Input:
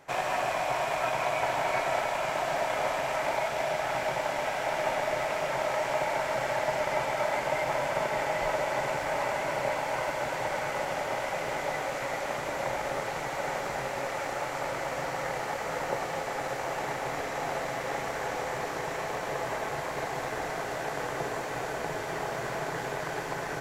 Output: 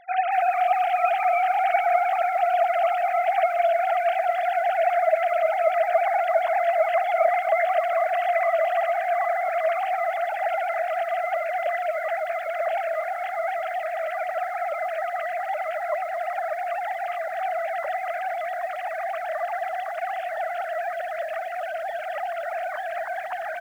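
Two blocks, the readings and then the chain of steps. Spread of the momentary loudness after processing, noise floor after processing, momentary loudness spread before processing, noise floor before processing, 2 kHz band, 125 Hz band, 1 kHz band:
8 LU, -31 dBFS, 5 LU, -35 dBFS, +3.0 dB, under -25 dB, +8.0 dB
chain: sine-wave speech; feedback echo 0.403 s, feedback 47%, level -18 dB; lo-fi delay 0.233 s, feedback 55%, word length 8-bit, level -14 dB; gain +6.5 dB

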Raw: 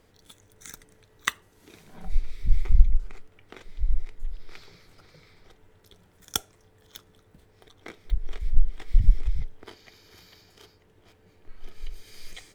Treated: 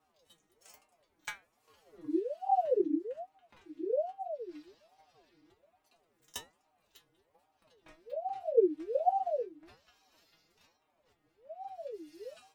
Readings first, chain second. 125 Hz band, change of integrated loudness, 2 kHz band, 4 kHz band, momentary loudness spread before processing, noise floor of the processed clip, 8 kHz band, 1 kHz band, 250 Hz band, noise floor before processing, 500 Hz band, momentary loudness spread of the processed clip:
under -35 dB, -4.0 dB, -12.5 dB, -14.0 dB, 23 LU, -77 dBFS, -14.0 dB, +11.5 dB, +11.5 dB, -60 dBFS, +19.5 dB, 19 LU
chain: metallic resonator 160 Hz, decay 0.29 s, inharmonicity 0.002; ring modulator with a swept carrier 540 Hz, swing 45%, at 1.2 Hz

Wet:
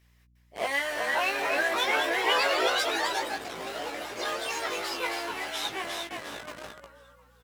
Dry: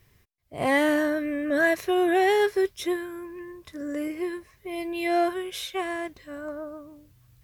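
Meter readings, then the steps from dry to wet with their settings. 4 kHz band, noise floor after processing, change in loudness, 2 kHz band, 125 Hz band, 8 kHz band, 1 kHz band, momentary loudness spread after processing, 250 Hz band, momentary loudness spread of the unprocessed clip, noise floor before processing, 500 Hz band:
+7.5 dB, -62 dBFS, -2.5 dB, +1.0 dB, n/a, +5.0 dB, 0.0 dB, 13 LU, -14.5 dB, 17 LU, -62 dBFS, -6.5 dB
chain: on a send: frequency-shifting echo 0.354 s, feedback 37%, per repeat -49 Hz, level -4.5 dB; on the sum: echoes that change speed 0.697 s, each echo +5 st, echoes 3; low shelf 260 Hz -11.5 dB; in parallel at -6 dB: Schmitt trigger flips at -31.5 dBFS; on the sum: weighting filter A; harmonic-percussive split harmonic -12 dB; hum 60 Hz, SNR 33 dB; doubler 18 ms -5 dB

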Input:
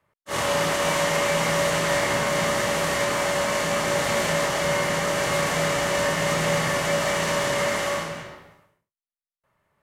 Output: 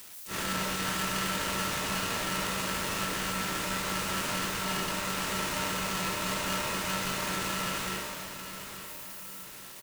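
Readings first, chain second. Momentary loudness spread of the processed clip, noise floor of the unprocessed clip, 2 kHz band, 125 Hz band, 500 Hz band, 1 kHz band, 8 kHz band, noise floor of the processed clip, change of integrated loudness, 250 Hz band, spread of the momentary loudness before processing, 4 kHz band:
10 LU, under -85 dBFS, -8.5 dB, -8.5 dB, -15.5 dB, -7.5 dB, -5.5 dB, -46 dBFS, -8.5 dB, -5.5 dB, 3 LU, -5.0 dB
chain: switching spikes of -26.5 dBFS; on a send: feedback echo 0.861 s, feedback 45%, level -10.5 dB; on the sum: polarity switched at an audio rate 760 Hz; gain -9 dB

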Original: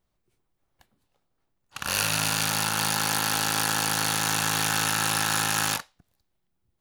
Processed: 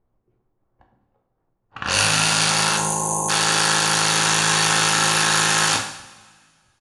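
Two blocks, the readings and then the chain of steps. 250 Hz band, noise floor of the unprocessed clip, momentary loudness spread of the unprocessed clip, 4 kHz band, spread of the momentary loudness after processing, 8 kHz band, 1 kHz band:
+5.5 dB, -77 dBFS, 2 LU, +8.0 dB, 5 LU, +7.0 dB, +7.0 dB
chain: downsampling 22050 Hz; low-pass opened by the level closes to 1000 Hz, open at -23.5 dBFS; spectral delete 2.77–3.29, 1100–6000 Hz; two-slope reverb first 0.66 s, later 1.9 s, from -17 dB, DRR 2 dB; gain +6 dB

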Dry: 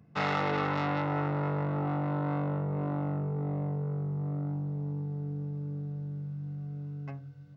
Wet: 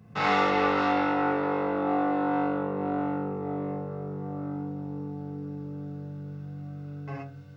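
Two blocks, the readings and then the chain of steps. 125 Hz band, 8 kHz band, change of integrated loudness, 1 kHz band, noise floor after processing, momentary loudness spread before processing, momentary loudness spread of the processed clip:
-6.0 dB, n/a, +4.0 dB, +7.0 dB, -43 dBFS, 9 LU, 15 LU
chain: in parallel at 0 dB: compressor, threshold -41 dBFS, peak gain reduction 15 dB; on the sum: non-linear reverb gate 0.15 s flat, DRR -6 dB; gain -2.5 dB

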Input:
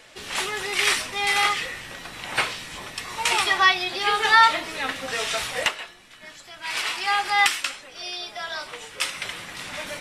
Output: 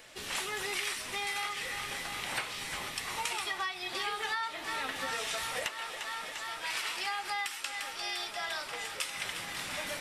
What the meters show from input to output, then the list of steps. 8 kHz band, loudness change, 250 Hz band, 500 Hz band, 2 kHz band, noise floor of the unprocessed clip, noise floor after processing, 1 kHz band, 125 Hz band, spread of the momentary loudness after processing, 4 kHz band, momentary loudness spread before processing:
-7.5 dB, -12.0 dB, -9.0 dB, -9.5 dB, -12.0 dB, -47 dBFS, -43 dBFS, -13.5 dB, -8.0 dB, 4 LU, -10.0 dB, 17 LU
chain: high shelf 12000 Hz +11.5 dB; thinning echo 0.348 s, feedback 84%, high-pass 220 Hz, level -15.5 dB; compressor 12:1, threshold -27 dBFS, peak gain reduction 16.5 dB; gain -4.5 dB

